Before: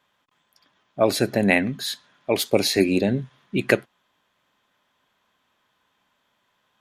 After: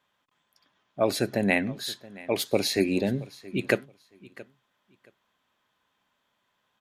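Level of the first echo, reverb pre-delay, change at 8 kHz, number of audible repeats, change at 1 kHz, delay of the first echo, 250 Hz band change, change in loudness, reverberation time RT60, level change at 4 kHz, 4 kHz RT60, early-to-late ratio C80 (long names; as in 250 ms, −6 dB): −20.5 dB, no reverb audible, −5.0 dB, 2, −5.0 dB, 674 ms, −5.0 dB, −5.0 dB, no reverb audible, −5.0 dB, no reverb audible, no reverb audible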